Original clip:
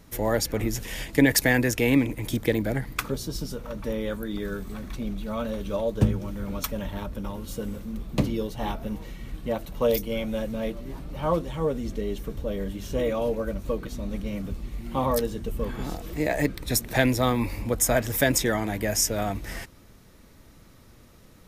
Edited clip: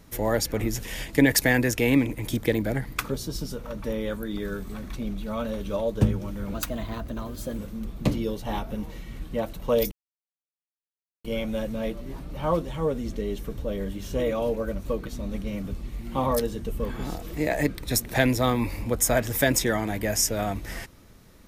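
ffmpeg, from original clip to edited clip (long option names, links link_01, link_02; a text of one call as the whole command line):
ffmpeg -i in.wav -filter_complex "[0:a]asplit=4[link_01][link_02][link_03][link_04];[link_01]atrim=end=6.544[link_05];[link_02]atrim=start=6.54:end=7.71,asetpts=PTS-STARTPTS,asetrate=49392,aresample=44100[link_06];[link_03]atrim=start=7.706:end=10.04,asetpts=PTS-STARTPTS,afade=type=out:start_time=2.33:duration=0.004:curve=hsin,apad=pad_dur=1.33[link_07];[link_04]atrim=start=10.04,asetpts=PTS-STARTPTS,afade=type=in:duration=0.004:curve=hsin[link_08];[link_05][link_06]acrossfade=duration=0.004:curve1=hsin:curve2=hsin[link_09];[link_07][link_08]concat=n=2:v=0:a=1[link_10];[link_09][link_10]acrossfade=duration=0.004:curve1=hsin:curve2=hsin" out.wav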